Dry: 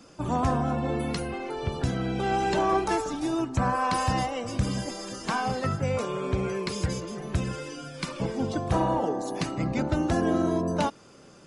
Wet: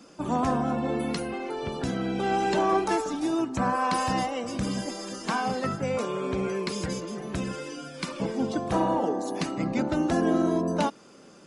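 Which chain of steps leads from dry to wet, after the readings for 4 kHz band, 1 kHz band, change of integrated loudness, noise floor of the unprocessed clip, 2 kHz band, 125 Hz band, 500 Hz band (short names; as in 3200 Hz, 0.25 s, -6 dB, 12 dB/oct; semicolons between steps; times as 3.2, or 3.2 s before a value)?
0.0 dB, 0.0 dB, 0.0 dB, -52 dBFS, 0.0 dB, -5.0 dB, +0.5 dB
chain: resonant low shelf 150 Hz -8 dB, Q 1.5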